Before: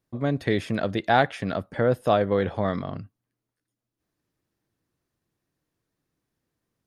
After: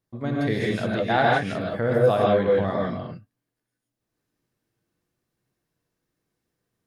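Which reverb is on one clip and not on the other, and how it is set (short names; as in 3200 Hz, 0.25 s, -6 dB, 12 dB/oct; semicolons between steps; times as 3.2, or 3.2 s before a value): non-linear reverb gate 0.19 s rising, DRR -3.5 dB; gain -3.5 dB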